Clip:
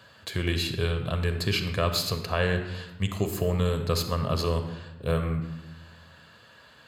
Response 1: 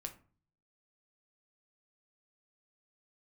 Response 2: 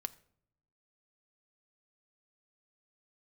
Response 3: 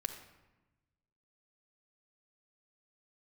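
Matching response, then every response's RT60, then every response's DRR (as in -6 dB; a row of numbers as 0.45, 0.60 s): 3; 0.40 s, not exponential, 1.1 s; 5.0, 12.0, 6.5 dB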